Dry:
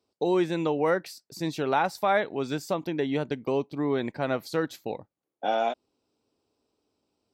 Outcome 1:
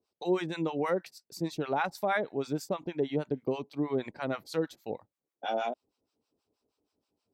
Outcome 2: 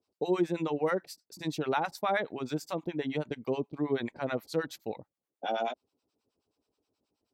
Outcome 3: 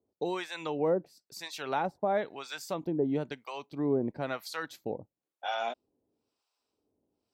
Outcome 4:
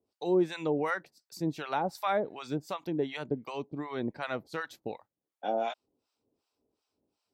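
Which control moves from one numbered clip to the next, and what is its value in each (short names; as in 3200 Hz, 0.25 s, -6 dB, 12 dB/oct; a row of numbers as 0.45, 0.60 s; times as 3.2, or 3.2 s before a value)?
harmonic tremolo, rate: 6.3, 9.4, 1, 2.7 Hz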